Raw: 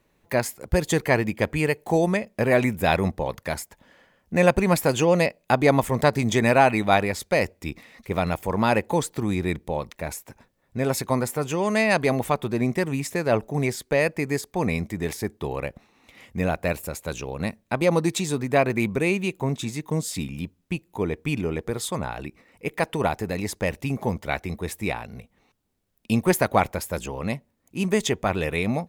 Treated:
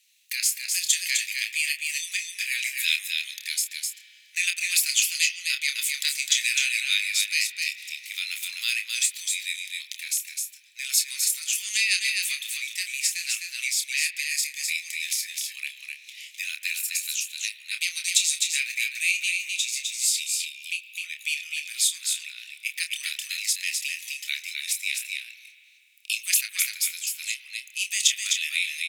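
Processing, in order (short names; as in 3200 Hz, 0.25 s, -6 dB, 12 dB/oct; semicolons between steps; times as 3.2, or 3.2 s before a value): steep high-pass 2400 Hz 36 dB/oct; bell 6700 Hz +8.5 dB 2.7 oct; doubler 28 ms -7 dB; echo 0.256 s -5 dB; spring tank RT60 2.6 s, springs 41 ms, chirp 80 ms, DRR 14 dB; in parallel at -1 dB: compressor, threshold -36 dBFS, peak gain reduction 19 dB; 26.41–27.07 on the sum: three-band expander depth 100%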